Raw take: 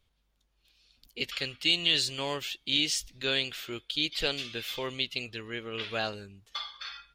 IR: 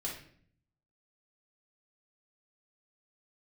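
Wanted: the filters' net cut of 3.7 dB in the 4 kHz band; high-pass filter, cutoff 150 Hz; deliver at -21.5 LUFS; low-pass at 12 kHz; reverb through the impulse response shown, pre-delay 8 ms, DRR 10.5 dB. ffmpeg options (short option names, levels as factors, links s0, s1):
-filter_complex "[0:a]highpass=150,lowpass=12000,equalizer=f=4000:t=o:g=-5,asplit=2[s0][s1];[1:a]atrim=start_sample=2205,adelay=8[s2];[s1][s2]afir=irnorm=-1:irlink=0,volume=0.266[s3];[s0][s3]amix=inputs=2:normalize=0,volume=3.76"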